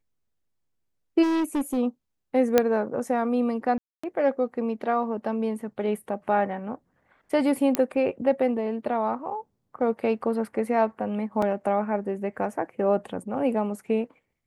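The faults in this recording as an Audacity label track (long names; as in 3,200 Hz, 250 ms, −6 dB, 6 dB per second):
1.220000	1.780000	clipping −22 dBFS
2.580000	2.580000	click −5 dBFS
3.780000	4.040000	drop-out 255 ms
7.750000	7.750000	click −8 dBFS
11.420000	11.420000	drop-out 3.7 ms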